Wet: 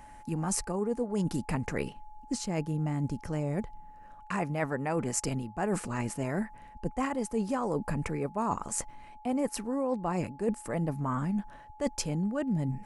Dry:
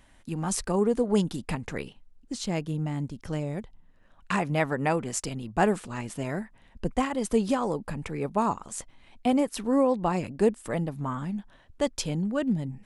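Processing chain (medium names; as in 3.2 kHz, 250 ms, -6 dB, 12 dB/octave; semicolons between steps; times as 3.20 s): peaking EQ 3.5 kHz -11 dB 0.55 oct; reverse; compression 10:1, threshold -32 dBFS, peak gain reduction 15.5 dB; reverse; whistle 850 Hz -55 dBFS; trim +5 dB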